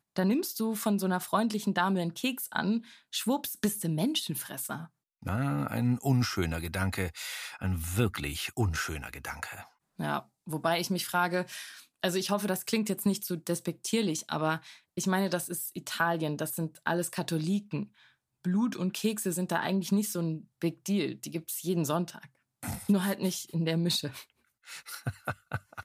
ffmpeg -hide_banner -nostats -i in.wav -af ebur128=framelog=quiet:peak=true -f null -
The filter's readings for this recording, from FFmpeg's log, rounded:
Integrated loudness:
  I:         -31.4 LUFS
  Threshold: -41.7 LUFS
Loudness range:
  LRA:         2.6 LU
  Threshold: -51.7 LUFS
  LRA low:   -33.0 LUFS
  LRA high:  -30.4 LUFS
True peak:
  Peak:      -13.6 dBFS